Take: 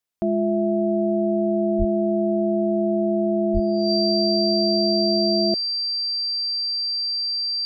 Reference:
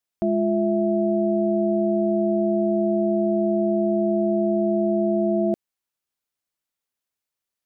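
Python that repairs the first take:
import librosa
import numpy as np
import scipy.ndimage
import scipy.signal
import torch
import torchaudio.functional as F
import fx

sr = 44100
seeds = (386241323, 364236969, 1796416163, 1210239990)

y = fx.notch(x, sr, hz=4700.0, q=30.0)
y = fx.fix_deplosive(y, sr, at_s=(1.78, 3.53))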